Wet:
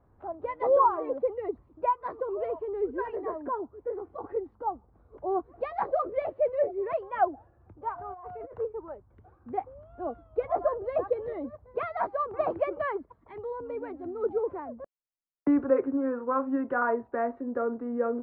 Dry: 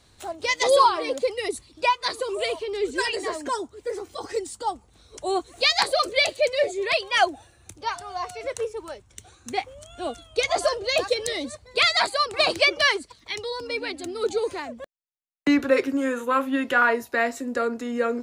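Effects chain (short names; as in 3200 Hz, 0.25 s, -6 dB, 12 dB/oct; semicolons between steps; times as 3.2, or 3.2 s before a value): LPF 1200 Hz 24 dB/oct; 7.98–8.59 negative-ratio compressor -38 dBFS, ratio -1; gain -3.5 dB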